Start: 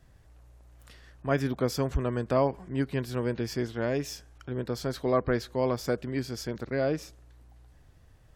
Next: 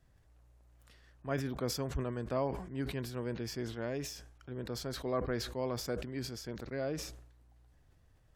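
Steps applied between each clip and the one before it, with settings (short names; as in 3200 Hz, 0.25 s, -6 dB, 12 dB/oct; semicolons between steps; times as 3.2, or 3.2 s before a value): sustainer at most 67 dB/s; gain -9 dB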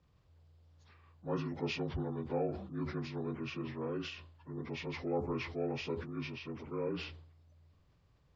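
inharmonic rescaling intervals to 77%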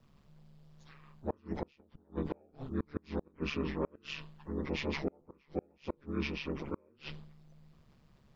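ring modulator 71 Hz; flipped gate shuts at -30 dBFS, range -35 dB; gain +8.5 dB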